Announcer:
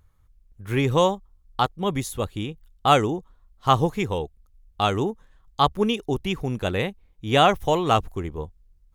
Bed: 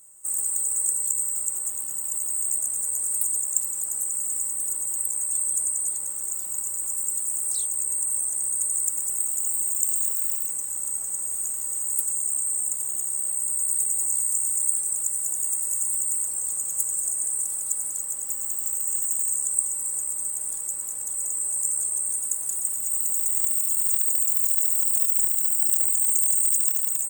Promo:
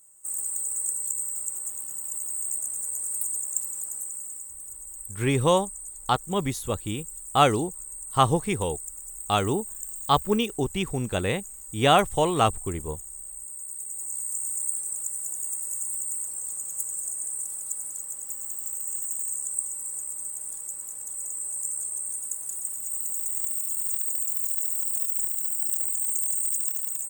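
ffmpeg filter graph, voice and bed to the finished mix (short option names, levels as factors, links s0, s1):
-filter_complex "[0:a]adelay=4500,volume=0.841[s0];[1:a]volume=1.41,afade=t=out:st=3.77:d=0.7:silence=0.375837,afade=t=in:st=13.78:d=0.71:silence=0.421697[s1];[s0][s1]amix=inputs=2:normalize=0"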